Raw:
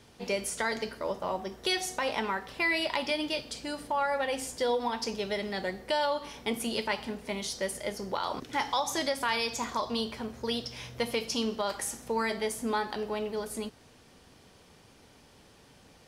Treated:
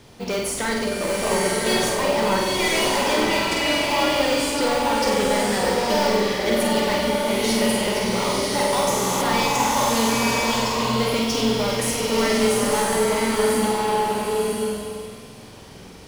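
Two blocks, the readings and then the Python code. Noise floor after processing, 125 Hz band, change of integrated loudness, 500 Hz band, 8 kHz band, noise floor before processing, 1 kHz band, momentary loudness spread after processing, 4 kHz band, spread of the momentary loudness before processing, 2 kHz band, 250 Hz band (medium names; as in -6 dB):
-41 dBFS, +16.0 dB, +11.0 dB, +12.0 dB, +13.5 dB, -58 dBFS, +11.0 dB, 4 LU, +10.5 dB, 6 LU, +9.5 dB, +13.0 dB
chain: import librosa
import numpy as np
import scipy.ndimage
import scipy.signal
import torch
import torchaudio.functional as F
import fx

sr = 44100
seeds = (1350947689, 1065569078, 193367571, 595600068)

p1 = np.clip(10.0 ** (30.0 / 20.0) * x, -1.0, 1.0) / 10.0 ** (30.0 / 20.0)
p2 = fx.room_flutter(p1, sr, wall_m=8.3, rt60_s=0.73)
p3 = fx.sample_hold(p2, sr, seeds[0], rate_hz=1800.0, jitter_pct=0)
p4 = p2 + (p3 * librosa.db_to_amplitude(-10.0))
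p5 = fx.buffer_glitch(p4, sr, at_s=(8.91,), block=1024, repeats=12)
p6 = fx.rev_bloom(p5, sr, seeds[1], attack_ms=1040, drr_db=-2.5)
y = p6 * librosa.db_to_amplitude(6.5)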